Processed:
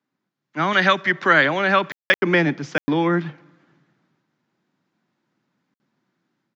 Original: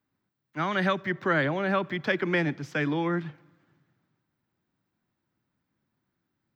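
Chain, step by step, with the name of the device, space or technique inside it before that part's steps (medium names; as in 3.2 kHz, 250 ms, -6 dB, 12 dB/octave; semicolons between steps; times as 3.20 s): call with lost packets (high-pass 150 Hz 24 dB/octave; resampled via 16 kHz; level rider gain up to 7 dB; lost packets of 20 ms bursts); 0.73–2.19 s: tilt shelf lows -5.5 dB, about 780 Hz; trim +1.5 dB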